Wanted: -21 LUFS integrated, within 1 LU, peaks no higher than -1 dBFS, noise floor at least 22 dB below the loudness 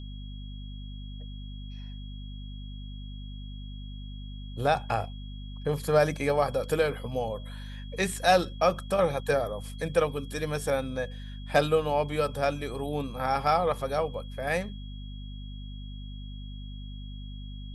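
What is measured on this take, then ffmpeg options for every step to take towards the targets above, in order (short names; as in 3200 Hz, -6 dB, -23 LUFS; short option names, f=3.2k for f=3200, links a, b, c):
hum 50 Hz; harmonics up to 250 Hz; hum level -37 dBFS; steady tone 3300 Hz; tone level -51 dBFS; loudness -28.5 LUFS; peak -9.5 dBFS; loudness target -21.0 LUFS
-> -af "bandreject=f=50:t=h:w=6,bandreject=f=100:t=h:w=6,bandreject=f=150:t=h:w=6,bandreject=f=200:t=h:w=6,bandreject=f=250:t=h:w=6"
-af "bandreject=f=3.3k:w=30"
-af "volume=7.5dB"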